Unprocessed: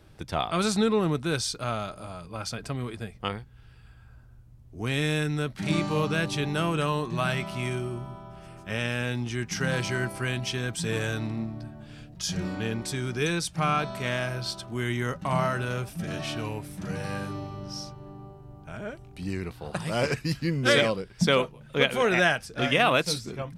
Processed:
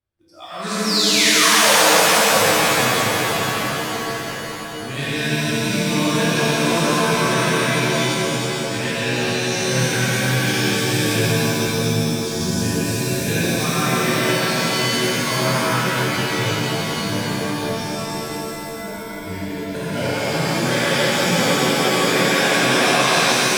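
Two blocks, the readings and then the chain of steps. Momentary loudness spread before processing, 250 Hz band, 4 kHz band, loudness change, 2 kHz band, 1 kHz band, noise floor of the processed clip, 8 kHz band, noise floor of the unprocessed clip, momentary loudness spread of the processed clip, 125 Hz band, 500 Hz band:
15 LU, +9.0 dB, +13.5 dB, +10.0 dB, +10.5 dB, +11.0 dB, -30 dBFS, +17.0 dB, -51 dBFS, 13 LU, +6.5 dB, +8.5 dB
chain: painted sound fall, 0.84–1.78, 420–5800 Hz -16 dBFS; on a send: split-band echo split 500 Hz, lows 0.651 s, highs 0.168 s, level -3.5 dB; on the sum: limiter -14.5 dBFS, peak gain reduction 9.5 dB; bell 380 Hz -3 dB; tremolo 4.2 Hz, depth 52%; spectral noise reduction 20 dB; AGC gain up to 10.5 dB; in parallel at -10 dB: short-mantissa float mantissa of 2-bit; on the sum: shimmer reverb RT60 3.8 s, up +7 st, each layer -2 dB, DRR -11 dB; gain -15.5 dB

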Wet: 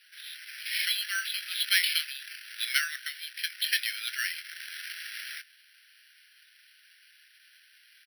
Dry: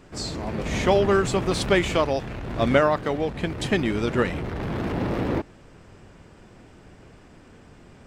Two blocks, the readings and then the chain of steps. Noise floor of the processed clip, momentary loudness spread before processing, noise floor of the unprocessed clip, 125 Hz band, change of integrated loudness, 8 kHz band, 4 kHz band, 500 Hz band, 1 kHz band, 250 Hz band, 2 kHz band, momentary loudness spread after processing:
-60 dBFS, 10 LU, -50 dBFS, under -40 dB, -6.0 dB, +1.5 dB, +4.5 dB, under -40 dB, -21.5 dB, under -40 dB, -0.5 dB, 15 LU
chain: steep high-pass 1500 Hz 96 dB/oct; bell 3300 Hz +9 dB 0.45 oct; doubler 24 ms -13 dB; careless resampling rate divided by 6×, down filtered, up hold

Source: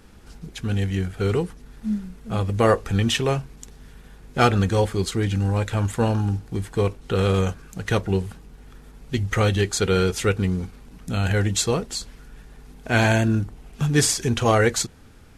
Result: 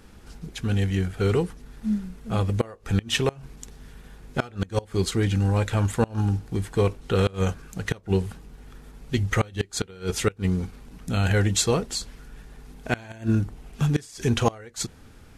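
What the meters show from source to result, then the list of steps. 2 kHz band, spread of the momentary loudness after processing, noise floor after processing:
-5.5 dB, 11 LU, -50 dBFS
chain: flipped gate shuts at -9 dBFS, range -25 dB

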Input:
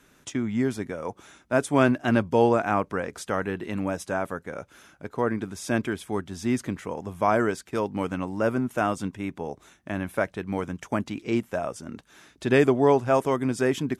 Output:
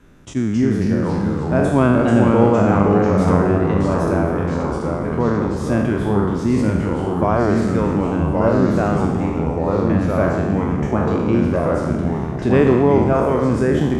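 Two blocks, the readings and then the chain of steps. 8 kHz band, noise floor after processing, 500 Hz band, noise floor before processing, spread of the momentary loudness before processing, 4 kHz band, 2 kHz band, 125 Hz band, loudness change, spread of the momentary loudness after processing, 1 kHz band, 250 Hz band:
n/a, -24 dBFS, +7.5 dB, -60 dBFS, 14 LU, +2.0 dB, +3.0 dB, +14.0 dB, +9.0 dB, 7 LU, +6.5 dB, +10.5 dB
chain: spectral trails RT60 1.12 s; in parallel at -3 dB: compressor, threshold -28 dBFS, peak gain reduction 14.5 dB; on the sum: echoes that change speed 0.236 s, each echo -2 st, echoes 3; tilt -3 dB/oct; attack slew limiter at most 560 dB/s; gain -2 dB

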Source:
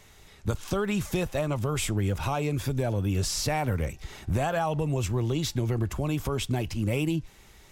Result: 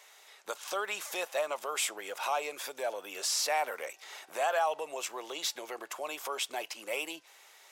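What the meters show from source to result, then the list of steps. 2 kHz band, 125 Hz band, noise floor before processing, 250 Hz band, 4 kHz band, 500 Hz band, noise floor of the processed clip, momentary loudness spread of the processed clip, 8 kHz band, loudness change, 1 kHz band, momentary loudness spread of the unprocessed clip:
0.0 dB, under -40 dB, -54 dBFS, -22.0 dB, 0.0 dB, -4.5 dB, -58 dBFS, 12 LU, 0.0 dB, -5.5 dB, 0.0 dB, 4 LU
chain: HPF 550 Hz 24 dB/oct

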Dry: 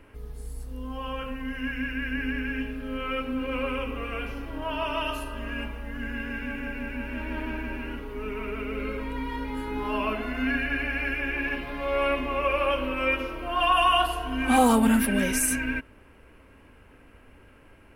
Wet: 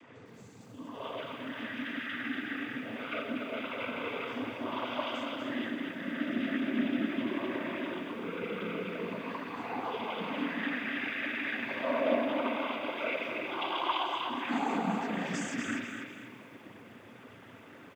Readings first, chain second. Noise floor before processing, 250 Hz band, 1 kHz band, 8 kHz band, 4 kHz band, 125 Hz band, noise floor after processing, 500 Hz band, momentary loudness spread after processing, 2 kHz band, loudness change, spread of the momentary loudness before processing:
-53 dBFS, -6.0 dB, -8.0 dB, under -15 dB, -6.0 dB, -9.5 dB, -52 dBFS, -5.5 dB, 18 LU, -6.5 dB, -7.0 dB, 13 LU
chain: compressor 3:1, threshold -38 dBFS, peak gain reduction 16.5 dB; echo 0.238 s -8 dB; spring tank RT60 1.5 s, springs 32 ms, chirp 75 ms, DRR -1 dB; noise vocoder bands 16; lo-fi delay 0.245 s, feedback 35%, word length 10-bit, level -8.5 dB

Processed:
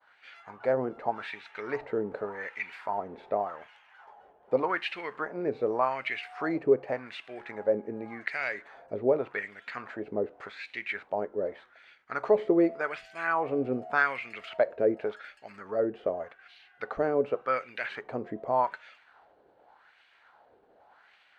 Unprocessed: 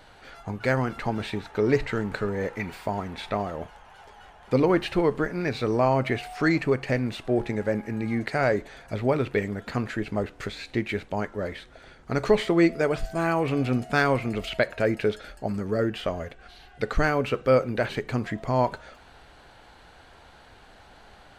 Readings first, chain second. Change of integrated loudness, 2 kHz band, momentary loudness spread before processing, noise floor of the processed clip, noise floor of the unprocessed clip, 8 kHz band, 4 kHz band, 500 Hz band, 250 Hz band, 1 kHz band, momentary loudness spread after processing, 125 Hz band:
-4.5 dB, -3.5 dB, 10 LU, -63 dBFS, -52 dBFS, under -15 dB, -8.5 dB, -3.5 dB, -8.0 dB, -2.5 dB, 13 LU, -18.0 dB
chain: expander -46 dBFS; wah 0.86 Hz 420–2500 Hz, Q 2.2; gain +2.5 dB

